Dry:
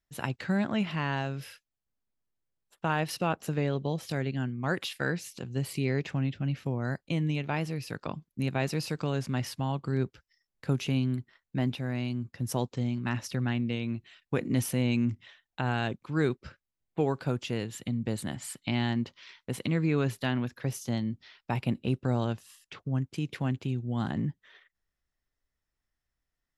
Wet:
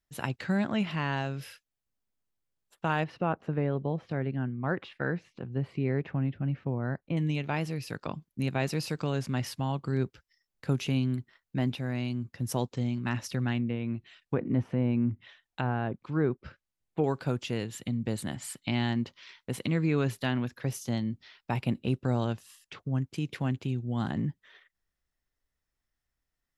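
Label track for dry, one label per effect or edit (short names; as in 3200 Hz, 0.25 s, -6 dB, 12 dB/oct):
3.040000	7.170000	LPF 1700 Hz
13.580000	17.040000	treble ducked by the level closes to 1300 Hz, closed at -25.5 dBFS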